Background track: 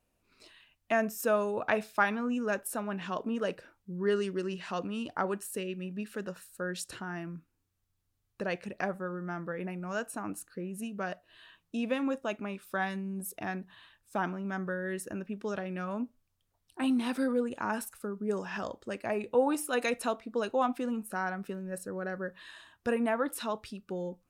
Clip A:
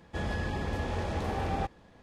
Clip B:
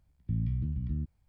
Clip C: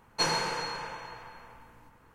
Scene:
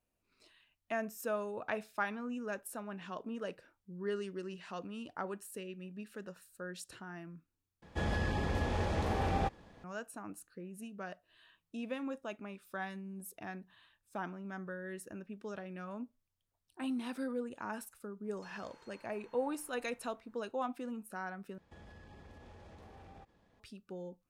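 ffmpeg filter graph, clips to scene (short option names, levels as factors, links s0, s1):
-filter_complex "[1:a]asplit=2[s0][s1];[0:a]volume=0.376[s2];[3:a]acompressor=threshold=0.00562:ratio=6:attack=3.2:release=140:knee=1:detection=peak[s3];[s1]acompressor=threshold=0.0112:ratio=6:attack=3.2:release=140:knee=1:detection=peak[s4];[s2]asplit=3[s5][s6][s7];[s5]atrim=end=7.824[s8];[s0]atrim=end=2.02,asetpts=PTS-STARTPTS,volume=0.891[s9];[s6]atrim=start=9.836:end=21.584[s10];[s4]atrim=end=2.02,asetpts=PTS-STARTPTS,volume=0.237[s11];[s7]atrim=start=23.596[s12];[s3]atrim=end=2.14,asetpts=PTS-STARTPTS,volume=0.188,afade=t=in:d=0.004:c=hsin,afade=t=out:st=2.136:d=0.004:c=hsin,adelay=18240[s13];[s8][s9]acrossfade=d=0.004:c1=hsin:c2=hsin[s14];[s14][s10]acrossfade=d=0.004:c1=hsin:c2=hsin[s15];[s15][s11]acrossfade=d=0.004:c1=hsin:c2=hsin[s16];[s16][s12]acrossfade=d=0.004:c1=hsin:c2=hsin[s17];[s17][s13]amix=inputs=2:normalize=0"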